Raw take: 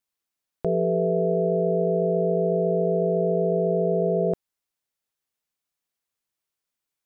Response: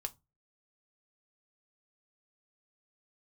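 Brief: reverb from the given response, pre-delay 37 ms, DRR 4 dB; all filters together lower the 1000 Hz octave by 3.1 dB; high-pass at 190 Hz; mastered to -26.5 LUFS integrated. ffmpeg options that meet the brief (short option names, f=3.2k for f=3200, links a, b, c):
-filter_complex "[0:a]highpass=190,equalizer=f=1k:t=o:g=-7.5,asplit=2[a][b];[1:a]atrim=start_sample=2205,adelay=37[c];[b][c]afir=irnorm=-1:irlink=0,volume=-2.5dB[d];[a][d]amix=inputs=2:normalize=0,volume=-1.5dB"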